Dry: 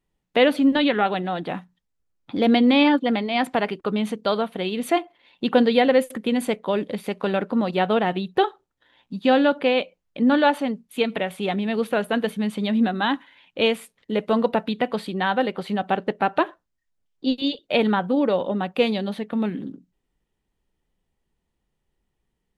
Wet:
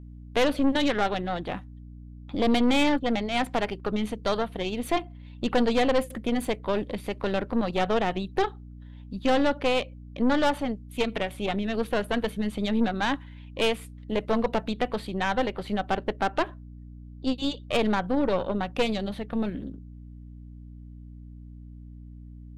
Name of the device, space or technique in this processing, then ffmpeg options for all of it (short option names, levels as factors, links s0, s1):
valve amplifier with mains hum: -af "aeval=exprs='(tanh(7.94*val(0)+0.75)-tanh(0.75))/7.94':c=same,aeval=exprs='val(0)+0.00794*(sin(2*PI*60*n/s)+sin(2*PI*2*60*n/s)/2+sin(2*PI*3*60*n/s)/3+sin(2*PI*4*60*n/s)/4+sin(2*PI*5*60*n/s)/5)':c=same"